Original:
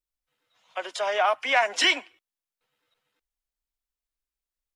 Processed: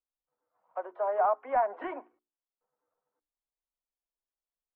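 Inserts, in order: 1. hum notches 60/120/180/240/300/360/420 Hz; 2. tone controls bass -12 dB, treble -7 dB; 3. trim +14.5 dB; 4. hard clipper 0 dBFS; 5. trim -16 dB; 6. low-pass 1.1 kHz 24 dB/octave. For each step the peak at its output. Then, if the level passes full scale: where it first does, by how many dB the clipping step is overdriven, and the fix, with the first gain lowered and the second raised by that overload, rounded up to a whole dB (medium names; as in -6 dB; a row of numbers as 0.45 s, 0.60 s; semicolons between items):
-10.5 dBFS, -10.0 dBFS, +4.5 dBFS, 0.0 dBFS, -16.0 dBFS, -17.0 dBFS; step 3, 4.5 dB; step 3 +9.5 dB, step 5 -11 dB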